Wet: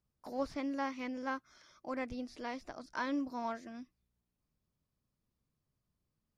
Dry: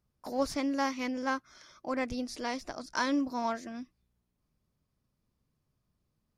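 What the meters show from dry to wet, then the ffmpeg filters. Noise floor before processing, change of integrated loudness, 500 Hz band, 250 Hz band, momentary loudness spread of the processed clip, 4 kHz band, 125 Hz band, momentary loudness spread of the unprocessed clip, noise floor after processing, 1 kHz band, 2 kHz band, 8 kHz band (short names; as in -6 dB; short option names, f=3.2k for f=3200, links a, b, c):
-80 dBFS, -6.0 dB, -6.0 dB, -6.0 dB, 10 LU, -10.5 dB, -6.0 dB, 10 LU, under -85 dBFS, -6.0 dB, -6.5 dB, -15.0 dB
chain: -filter_complex "[0:a]acrossover=split=3900[a][b];[b]acompressor=threshold=-56dB:ratio=4:attack=1:release=60[c];[a][c]amix=inputs=2:normalize=0,volume=-6dB"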